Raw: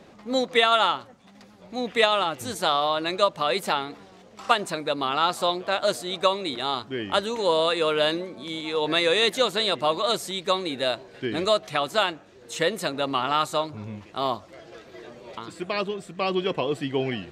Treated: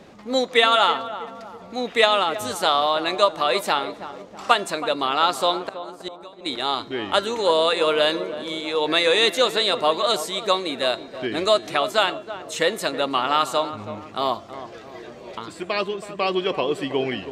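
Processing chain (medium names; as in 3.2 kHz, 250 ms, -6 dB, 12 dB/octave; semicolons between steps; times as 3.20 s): de-hum 343 Hz, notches 28; 5.55–6.46 s: inverted gate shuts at -20 dBFS, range -25 dB; dynamic bell 140 Hz, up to -8 dB, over -47 dBFS, Q 1.1; on a send: filtered feedback delay 324 ms, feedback 53%, low-pass 1.1 kHz, level -11 dB; on the sum: trim +3.5 dB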